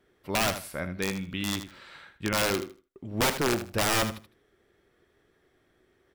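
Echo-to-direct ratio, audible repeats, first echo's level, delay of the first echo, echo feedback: -10.5 dB, 2, -10.5 dB, 78 ms, 20%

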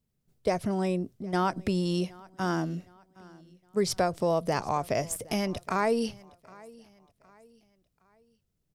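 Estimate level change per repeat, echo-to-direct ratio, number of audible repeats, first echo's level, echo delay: -8.0 dB, -22.5 dB, 2, -23.0 dB, 0.765 s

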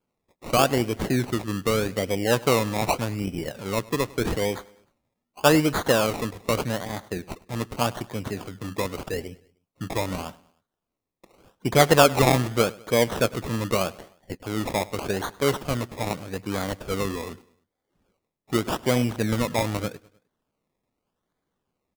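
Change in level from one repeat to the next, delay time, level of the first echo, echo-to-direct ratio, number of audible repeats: -6.5 dB, 0.102 s, -22.0 dB, -21.0 dB, 3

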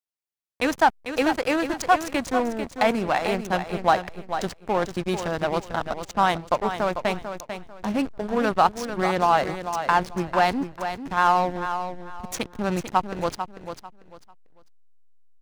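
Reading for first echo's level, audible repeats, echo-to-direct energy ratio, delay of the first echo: -9.0 dB, 3, -8.5 dB, 0.445 s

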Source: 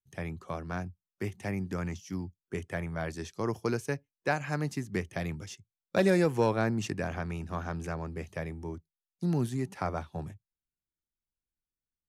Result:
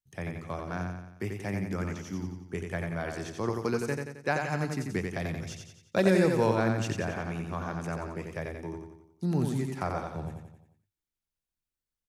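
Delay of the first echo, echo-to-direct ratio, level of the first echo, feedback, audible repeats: 89 ms, -3.5 dB, -4.5 dB, 50%, 6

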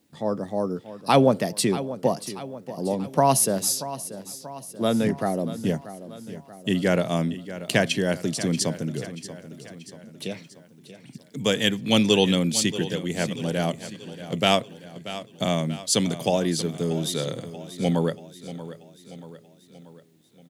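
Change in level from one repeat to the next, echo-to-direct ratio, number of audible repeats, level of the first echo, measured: -5.5 dB, -12.5 dB, 4, -14.0 dB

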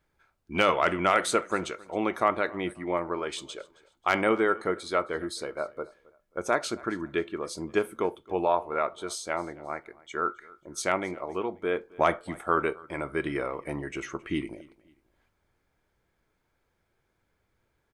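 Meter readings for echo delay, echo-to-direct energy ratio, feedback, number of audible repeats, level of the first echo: 0.268 s, -22.5 dB, 34%, 2, -23.0 dB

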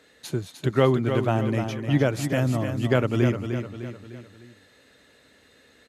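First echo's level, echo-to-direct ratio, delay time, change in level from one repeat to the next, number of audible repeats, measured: -7.5 dB, -6.5 dB, 0.303 s, -6.5 dB, 4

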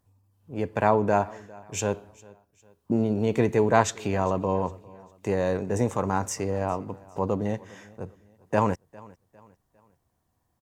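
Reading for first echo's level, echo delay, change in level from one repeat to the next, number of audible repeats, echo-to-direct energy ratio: -23.0 dB, 0.403 s, -8.0 dB, 2, -22.5 dB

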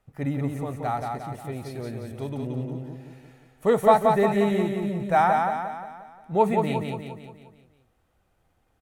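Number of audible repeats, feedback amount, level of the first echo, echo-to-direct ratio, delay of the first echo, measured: 6, 49%, -4.0 dB, -3.0 dB, 0.177 s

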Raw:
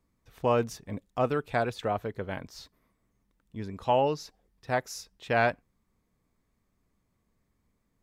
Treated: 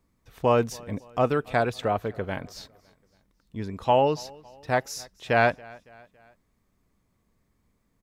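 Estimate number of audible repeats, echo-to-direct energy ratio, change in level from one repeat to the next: 2, -23.0 dB, -6.0 dB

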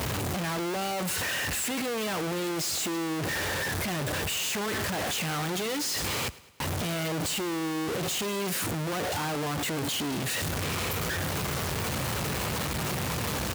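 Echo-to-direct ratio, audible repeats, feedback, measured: -19.0 dB, 3, 55%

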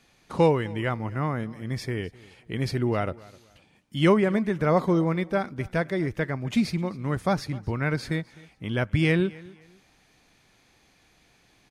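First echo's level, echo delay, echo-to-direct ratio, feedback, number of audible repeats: -22.0 dB, 0.257 s, -21.5 dB, 27%, 2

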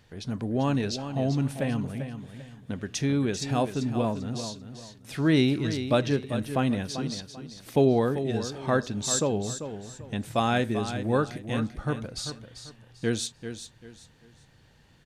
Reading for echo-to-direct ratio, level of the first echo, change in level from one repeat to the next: -9.5 dB, -10.0 dB, -10.5 dB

